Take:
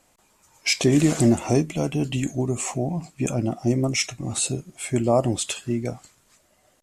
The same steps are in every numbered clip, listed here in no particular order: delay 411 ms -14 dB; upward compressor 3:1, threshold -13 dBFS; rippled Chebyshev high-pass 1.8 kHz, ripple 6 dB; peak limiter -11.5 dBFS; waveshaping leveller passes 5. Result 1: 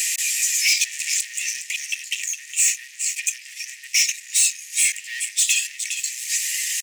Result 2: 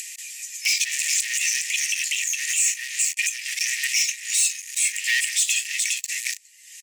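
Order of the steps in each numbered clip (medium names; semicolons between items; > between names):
upward compressor > delay > waveshaping leveller > peak limiter > rippled Chebyshev high-pass; delay > waveshaping leveller > rippled Chebyshev high-pass > upward compressor > peak limiter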